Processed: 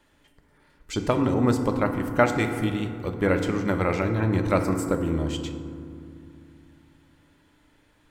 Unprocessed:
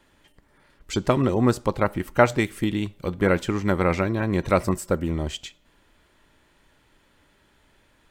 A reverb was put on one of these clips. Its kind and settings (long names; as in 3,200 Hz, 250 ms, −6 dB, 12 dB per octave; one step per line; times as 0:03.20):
feedback delay network reverb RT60 2.4 s, low-frequency decay 1.55×, high-frequency decay 0.35×, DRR 5 dB
level −3 dB